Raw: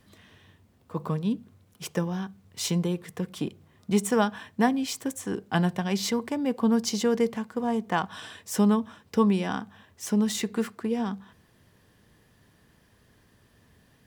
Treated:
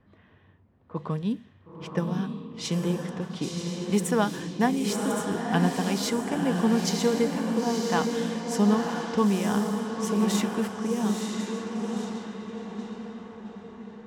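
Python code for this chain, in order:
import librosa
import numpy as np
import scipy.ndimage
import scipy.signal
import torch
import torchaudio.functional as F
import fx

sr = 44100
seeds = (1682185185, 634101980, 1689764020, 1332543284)

y = fx.dmg_noise_colour(x, sr, seeds[0], colour='white', level_db=-53.0, at=(3.2, 4.09), fade=0.02)
y = fx.echo_diffused(y, sr, ms=971, feedback_pct=54, wet_db=-3)
y = fx.env_lowpass(y, sr, base_hz=1600.0, full_db=-22.5)
y = y * 10.0 ** (-1.0 / 20.0)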